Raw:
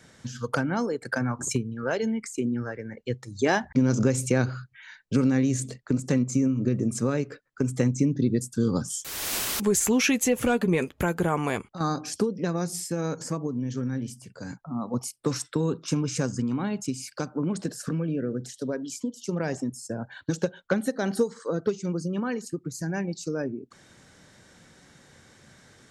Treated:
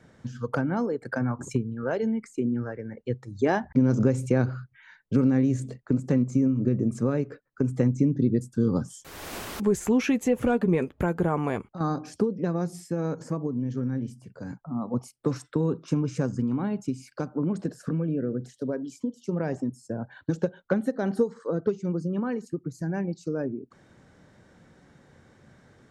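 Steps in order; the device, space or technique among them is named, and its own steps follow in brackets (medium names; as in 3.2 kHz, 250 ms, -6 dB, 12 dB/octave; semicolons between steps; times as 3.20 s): through cloth (treble shelf 2.2 kHz -15.5 dB); trim +1 dB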